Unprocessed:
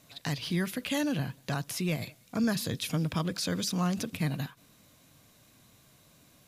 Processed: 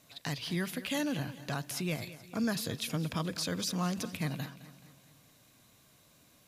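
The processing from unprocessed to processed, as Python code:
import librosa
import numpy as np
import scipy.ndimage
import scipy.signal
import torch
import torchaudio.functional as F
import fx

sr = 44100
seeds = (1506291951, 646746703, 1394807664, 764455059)

p1 = fx.low_shelf(x, sr, hz=250.0, db=-3.5)
p2 = p1 + fx.echo_feedback(p1, sr, ms=213, feedback_pct=51, wet_db=-15.5, dry=0)
y = p2 * librosa.db_to_amplitude(-2.0)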